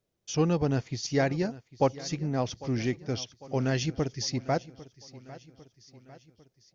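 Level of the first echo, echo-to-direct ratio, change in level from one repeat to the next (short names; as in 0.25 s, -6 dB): -18.5 dB, -17.0 dB, -5.5 dB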